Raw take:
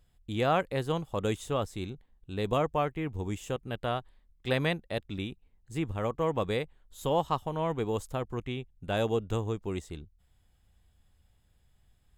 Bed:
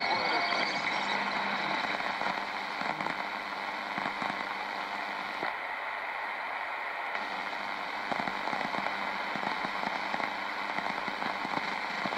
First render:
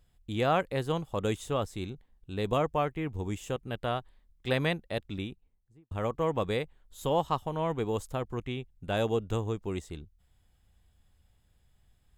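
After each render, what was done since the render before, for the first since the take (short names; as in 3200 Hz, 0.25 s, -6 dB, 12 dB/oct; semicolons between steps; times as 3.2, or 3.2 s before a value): 5.1–5.91 studio fade out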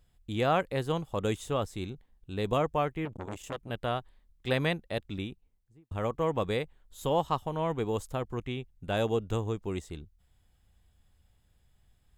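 3.05–3.7 core saturation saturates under 1100 Hz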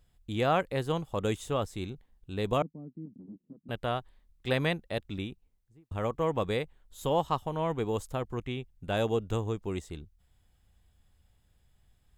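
2.62–3.69 Butterworth band-pass 220 Hz, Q 2.1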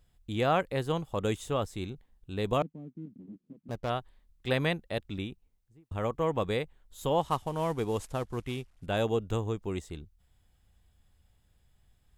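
2.61–3.9 median filter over 25 samples; 7.21–8.86 CVSD 64 kbps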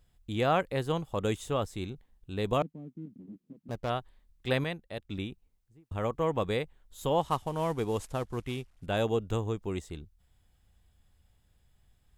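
4.64–5.1 gain -6 dB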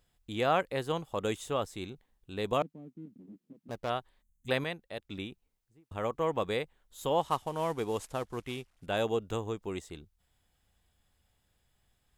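4.22–4.49 spectral gain 240–6000 Hz -26 dB; low shelf 180 Hz -10 dB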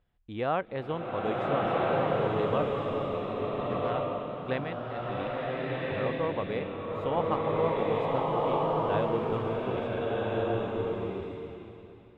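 air absorption 390 m; bloom reverb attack 1.45 s, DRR -5.5 dB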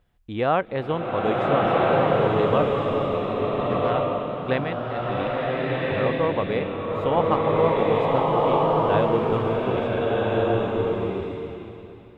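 gain +7.5 dB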